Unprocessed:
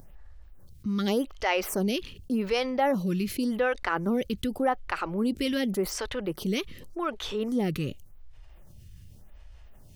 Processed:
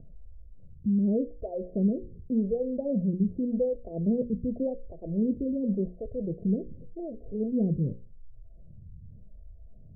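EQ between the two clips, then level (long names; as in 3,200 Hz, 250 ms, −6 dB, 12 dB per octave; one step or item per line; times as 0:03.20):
Chebyshev low-pass with heavy ripple 690 Hz, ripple 6 dB
low-shelf EQ 310 Hz +9.5 dB
mains-hum notches 60/120/180/240/300/360/420/480/540 Hz
−2.0 dB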